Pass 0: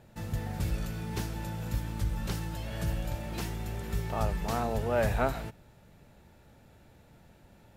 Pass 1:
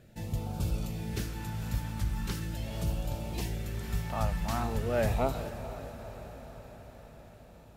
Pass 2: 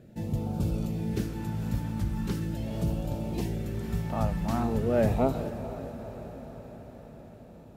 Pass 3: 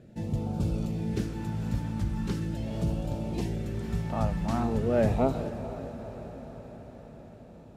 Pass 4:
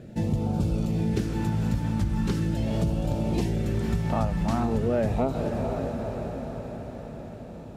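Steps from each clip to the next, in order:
auto-filter notch sine 0.41 Hz 390–1,900 Hz; feedback delay with all-pass diffusion 471 ms, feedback 63%, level −12 dB
parametric band 260 Hz +12.5 dB 2.9 octaves; level −4 dB
low-pass filter 9,400 Hz 12 dB per octave
downward compressor 6 to 1, threshold −30 dBFS, peak gain reduction 10.5 dB; level +8.5 dB

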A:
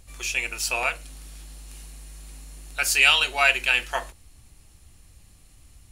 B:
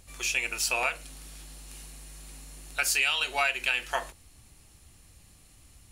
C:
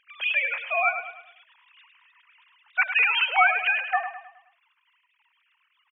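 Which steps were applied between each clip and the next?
low-shelf EQ 72 Hz −8 dB; downward compressor 6 to 1, threshold −23 dBFS, peak gain reduction 10.5 dB
three sine waves on the formant tracks; repeating echo 105 ms, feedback 43%, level −9.5 dB; level +4.5 dB

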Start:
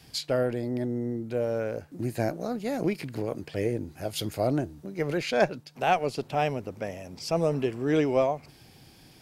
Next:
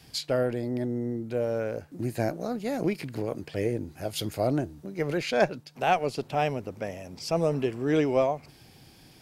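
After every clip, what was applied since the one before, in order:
no processing that can be heard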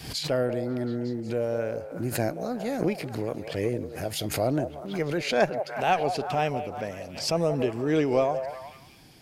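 echo through a band-pass that steps 181 ms, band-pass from 650 Hz, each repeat 0.7 octaves, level −7 dB
tape wow and flutter 26 cents
background raised ahead of every attack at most 87 dB per second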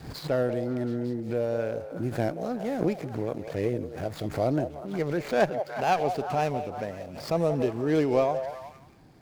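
running median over 15 samples

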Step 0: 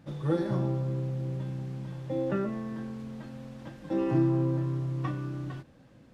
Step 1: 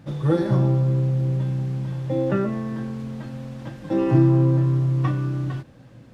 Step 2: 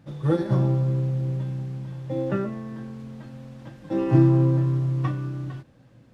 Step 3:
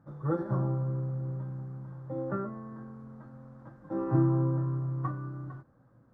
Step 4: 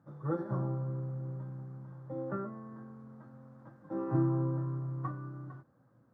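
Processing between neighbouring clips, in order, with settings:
parametric band 120 Hz +7.5 dB 0.31 octaves; level +7 dB
expander for the loud parts 1.5 to 1, over −27 dBFS
high shelf with overshoot 1,900 Hz −13.5 dB, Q 3; level −8.5 dB
high-pass filter 100 Hz; level −3.5 dB

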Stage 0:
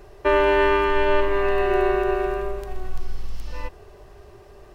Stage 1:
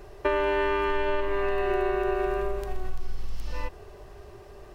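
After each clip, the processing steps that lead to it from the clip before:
downward compressor, threshold −22 dBFS, peak gain reduction 9 dB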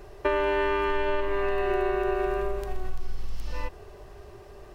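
no processing that can be heard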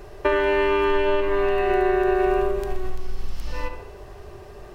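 delay with a low-pass on its return 70 ms, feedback 49%, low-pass 3,600 Hz, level −8 dB
level +4.5 dB

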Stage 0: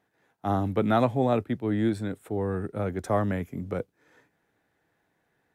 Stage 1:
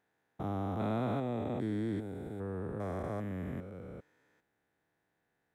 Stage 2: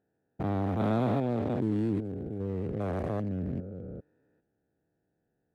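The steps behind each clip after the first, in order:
spectrum averaged block by block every 400 ms; level −6.5 dB
adaptive Wiener filter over 41 samples; level +6.5 dB

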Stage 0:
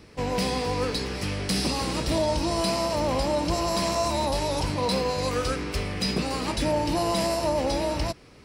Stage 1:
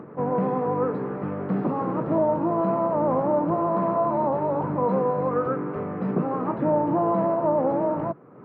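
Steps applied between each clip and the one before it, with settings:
elliptic band-pass filter 140–1,300 Hz, stop band 60 dB
upward compression, threshold −38 dBFS
level +4 dB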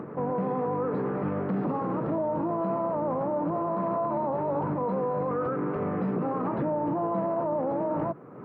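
brickwall limiter −24 dBFS, peak gain reduction 11.5 dB
level +3 dB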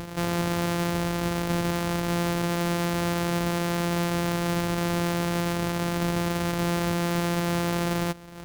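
samples sorted by size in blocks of 256 samples
level +2 dB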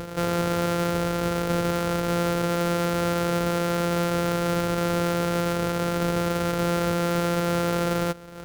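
hollow resonant body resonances 480/1,400 Hz, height 11 dB, ringing for 45 ms

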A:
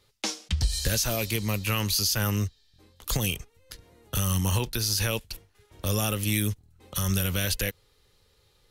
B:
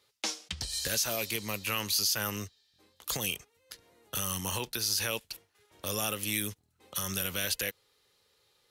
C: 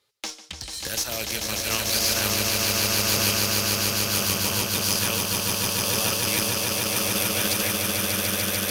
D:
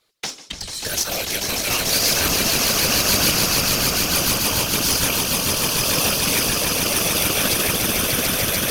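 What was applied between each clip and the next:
high-pass filter 430 Hz 6 dB per octave; level −2.5 dB
echo that builds up and dies away 147 ms, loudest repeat 8, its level −3.5 dB; harmonic generator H 4 −24 dB, 7 −24 dB, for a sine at −12 dBFS; level +3.5 dB
random phases in short frames; level +4.5 dB

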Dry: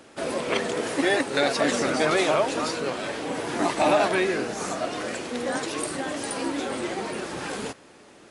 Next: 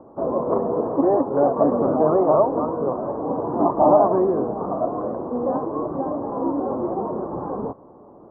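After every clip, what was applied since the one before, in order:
Chebyshev low-pass filter 1,100 Hz, order 5
level +6.5 dB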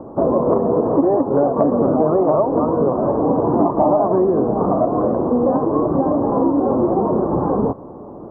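low-shelf EQ 410 Hz +6.5 dB
downward compressor 5 to 1, threshold −21 dBFS, peak gain reduction 12 dB
level +8 dB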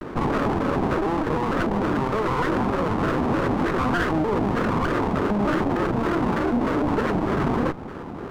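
lower of the sound and its delayed copy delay 0.71 ms
brickwall limiter −17.5 dBFS, peak gain reduction 11.5 dB
pitch modulation by a square or saw wave square 3.3 Hz, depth 250 cents
level +2.5 dB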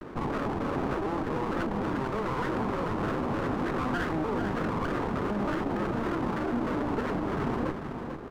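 single-tap delay 444 ms −7 dB
level −8 dB

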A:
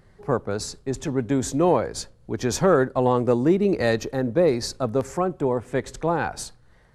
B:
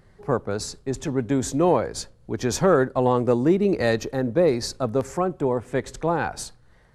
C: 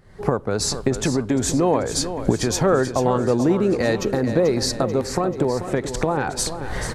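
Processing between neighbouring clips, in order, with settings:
no processing that can be heard
camcorder AGC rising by 61 dB per second; repeating echo 437 ms, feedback 55%, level −10.5 dB

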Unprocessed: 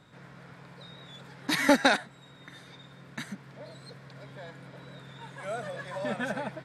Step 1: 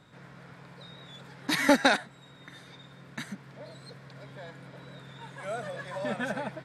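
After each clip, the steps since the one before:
no processing that can be heard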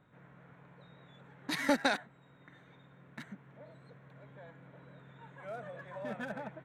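adaptive Wiener filter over 9 samples
level −7.5 dB

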